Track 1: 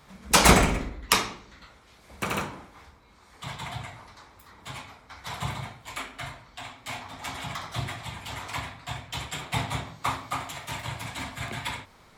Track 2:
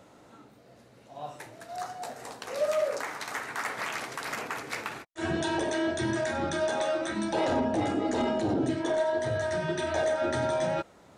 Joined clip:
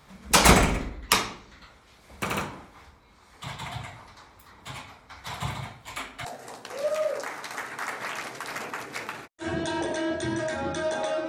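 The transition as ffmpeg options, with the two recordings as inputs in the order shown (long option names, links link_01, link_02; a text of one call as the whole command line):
ffmpeg -i cue0.wav -i cue1.wav -filter_complex "[0:a]apad=whole_dur=11.28,atrim=end=11.28,atrim=end=6.252[link_01];[1:a]atrim=start=2.018:end=7.05[link_02];[link_01][link_02]acrossfade=duration=0.004:curve1=hsin:curve2=hsin" out.wav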